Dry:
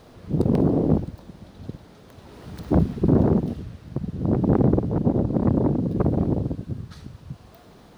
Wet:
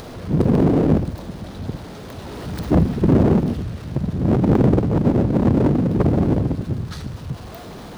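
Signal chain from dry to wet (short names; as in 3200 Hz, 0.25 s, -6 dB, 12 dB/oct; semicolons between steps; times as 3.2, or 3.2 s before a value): power-law curve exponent 0.7; upward compressor, threshold -38 dBFS; gain +1.5 dB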